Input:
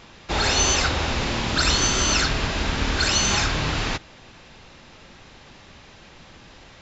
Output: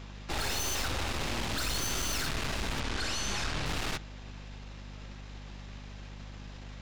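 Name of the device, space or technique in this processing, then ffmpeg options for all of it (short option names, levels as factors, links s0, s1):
valve amplifier with mains hum: -filter_complex "[0:a]aeval=exprs='(tanh(39.8*val(0)+0.8)-tanh(0.8))/39.8':c=same,aeval=exprs='val(0)+0.00631*(sin(2*PI*50*n/s)+sin(2*PI*2*50*n/s)/2+sin(2*PI*3*50*n/s)/3+sin(2*PI*4*50*n/s)/4+sin(2*PI*5*50*n/s)/5)':c=same,asettb=1/sr,asplit=3[s0][s1][s2];[s0]atrim=end=2.804[s3];[s1]atrim=start=2.8:end=3.66,asetpts=PTS-STARTPTS,afade=t=in:d=0.004:c=qsin,afade=t=out:st=0.856:d=0.004:c=qsin,lowpass=7100[s4];[s2]atrim=start=3.656[s5];[s3][s4]acrossfade=d=0.004:c1=hsin:c2=qsin[s6];[s6][s5]acrossfade=d=0.004:c1=qsin:c2=hsin"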